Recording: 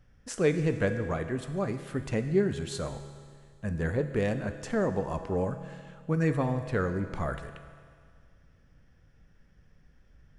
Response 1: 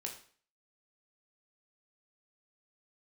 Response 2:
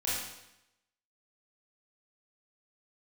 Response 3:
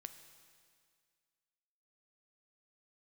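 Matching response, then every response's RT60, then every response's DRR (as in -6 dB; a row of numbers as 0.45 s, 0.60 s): 3; 0.45 s, 0.85 s, 2.0 s; 1.0 dB, -9.0 dB, 8.0 dB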